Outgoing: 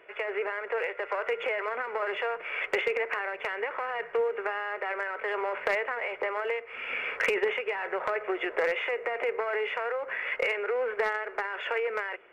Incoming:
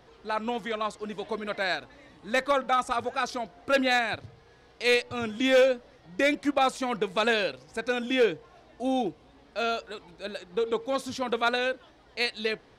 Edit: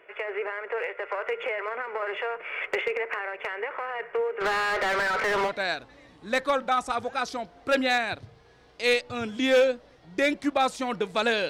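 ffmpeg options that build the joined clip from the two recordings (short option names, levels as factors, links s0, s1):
-filter_complex "[0:a]asplit=3[s0][s1][s2];[s0]afade=t=out:st=4.4:d=0.02[s3];[s1]asplit=2[s4][s5];[s5]highpass=f=720:p=1,volume=22.4,asoftclip=type=tanh:threshold=0.119[s6];[s4][s6]amix=inputs=2:normalize=0,lowpass=f=3000:p=1,volume=0.501,afade=t=in:st=4.4:d=0.02,afade=t=out:st=5.52:d=0.02[s7];[s2]afade=t=in:st=5.52:d=0.02[s8];[s3][s7][s8]amix=inputs=3:normalize=0,apad=whole_dur=11.49,atrim=end=11.49,atrim=end=5.52,asetpts=PTS-STARTPTS[s9];[1:a]atrim=start=1.47:end=7.5,asetpts=PTS-STARTPTS[s10];[s9][s10]acrossfade=d=0.06:c1=tri:c2=tri"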